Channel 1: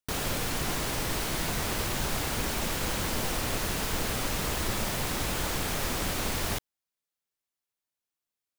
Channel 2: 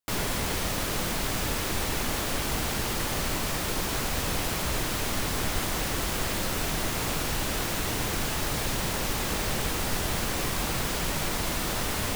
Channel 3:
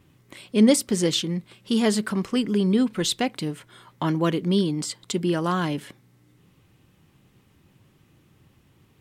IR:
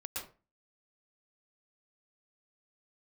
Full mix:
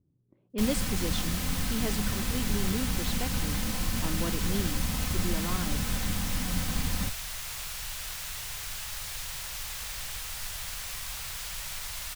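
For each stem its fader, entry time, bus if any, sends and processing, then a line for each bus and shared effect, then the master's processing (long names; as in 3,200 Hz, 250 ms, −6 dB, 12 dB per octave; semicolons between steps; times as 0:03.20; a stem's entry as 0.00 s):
−0.5 dB, 0.50 s, no send, lower of the sound and its delayed copy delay 3.9 ms; low shelf with overshoot 250 Hz +12 dB, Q 1.5; flanger 0.56 Hz, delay 8.5 ms, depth 3.4 ms, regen +64%
−4.0 dB, 0.50 s, no send, guitar amp tone stack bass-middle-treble 10-0-10
−12.5 dB, 0.00 s, no send, low-pass that shuts in the quiet parts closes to 340 Hz, open at −17.5 dBFS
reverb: not used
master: no processing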